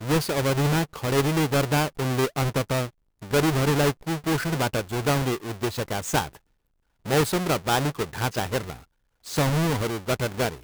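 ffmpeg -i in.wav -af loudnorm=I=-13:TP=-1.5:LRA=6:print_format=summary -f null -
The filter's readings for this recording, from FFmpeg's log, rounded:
Input Integrated:    -25.2 LUFS
Input True Peak:      -9.4 dBTP
Input LRA:             3.0 LU
Input Threshold:     -35.7 LUFS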